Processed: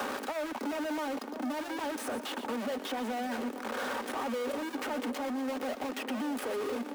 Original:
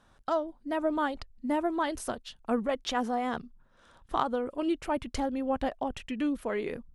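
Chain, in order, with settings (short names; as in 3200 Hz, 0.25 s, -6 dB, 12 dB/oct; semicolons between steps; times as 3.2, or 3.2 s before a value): infinite clipping; steep high-pass 230 Hz 72 dB/oct; high shelf 2200 Hz -12 dB; in parallel at -0.5 dB: limiter -35 dBFS, peak gain reduction 11.5 dB; on the sum: soft clip -27 dBFS, distortion -18 dB; notch comb 340 Hz; on a send: split-band echo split 1300 Hz, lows 0.614 s, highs 0.119 s, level -12 dB; on the sum: three-band squash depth 70%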